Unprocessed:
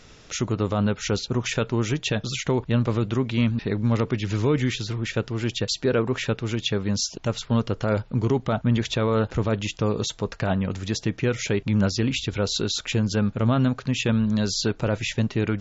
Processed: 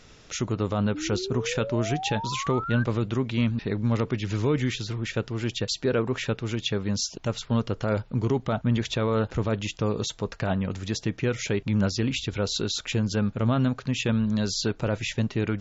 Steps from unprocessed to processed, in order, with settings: painted sound rise, 0.94–2.84 s, 290–1600 Hz -31 dBFS; trim -2.5 dB

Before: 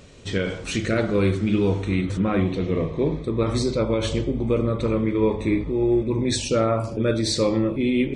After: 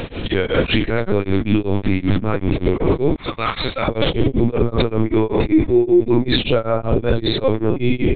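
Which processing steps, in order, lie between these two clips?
3.15–3.89 s: high-pass 1.3 kHz 12 dB/octave; compression, threshold -25 dBFS, peak gain reduction 9.5 dB; LPC vocoder at 8 kHz pitch kept; loudness maximiser +26.5 dB; tremolo of two beating tones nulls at 5.2 Hz; trim -4 dB

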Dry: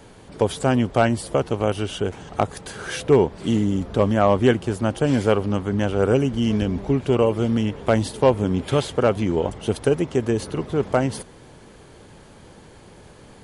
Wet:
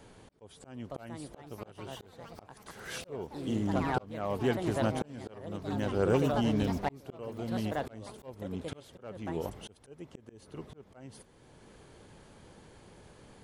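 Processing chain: ever faster or slower copies 587 ms, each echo +4 st, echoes 3, each echo -6 dB; slow attack 793 ms; trim -8.5 dB

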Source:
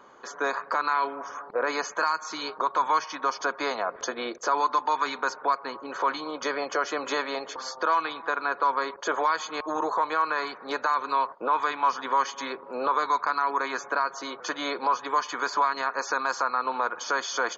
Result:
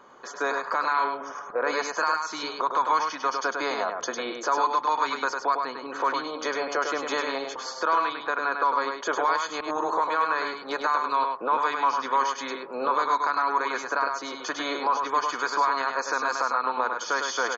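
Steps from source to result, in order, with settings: delay 102 ms -5 dB

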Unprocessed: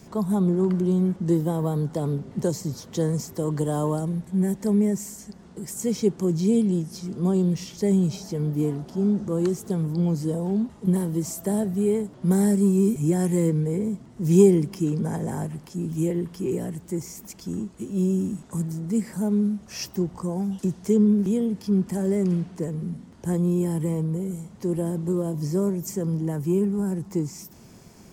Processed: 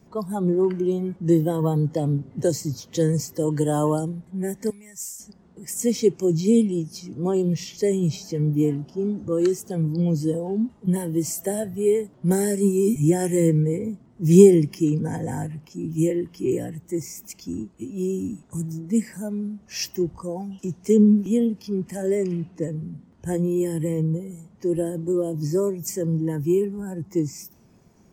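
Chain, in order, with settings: 4.70–5.20 s: amplifier tone stack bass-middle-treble 10-0-10; spectral noise reduction 11 dB; tape noise reduction on one side only decoder only; trim +4.5 dB

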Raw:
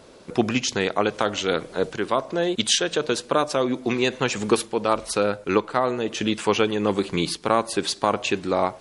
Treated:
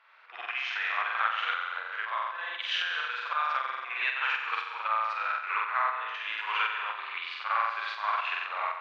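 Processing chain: high-pass 1.2 kHz 24 dB/octave; flutter echo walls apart 7.8 m, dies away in 1.2 s; tremolo saw up 3.9 Hz, depth 45%; low-pass 2.5 kHz 24 dB/octave; reverse echo 58 ms -7.5 dB

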